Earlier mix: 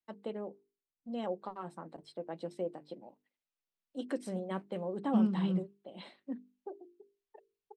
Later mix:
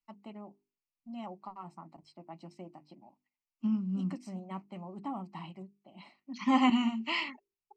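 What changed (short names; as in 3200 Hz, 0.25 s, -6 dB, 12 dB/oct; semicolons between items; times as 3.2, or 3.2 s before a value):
second voice: entry -1.50 s; master: add fixed phaser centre 2400 Hz, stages 8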